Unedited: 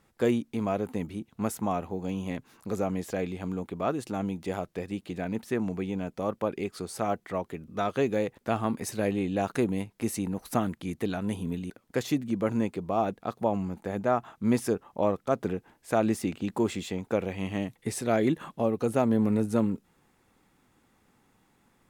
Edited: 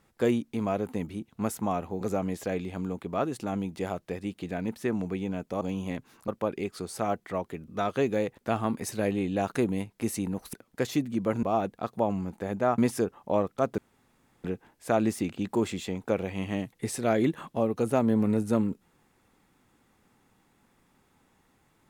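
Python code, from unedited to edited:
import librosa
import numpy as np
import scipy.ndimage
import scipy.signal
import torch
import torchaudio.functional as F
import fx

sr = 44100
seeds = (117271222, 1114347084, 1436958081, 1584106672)

y = fx.edit(x, sr, fx.move(start_s=2.01, length_s=0.67, to_s=6.28),
    fx.cut(start_s=10.53, length_s=1.16),
    fx.cut(start_s=12.59, length_s=0.28),
    fx.cut(start_s=14.22, length_s=0.25),
    fx.insert_room_tone(at_s=15.47, length_s=0.66), tone=tone)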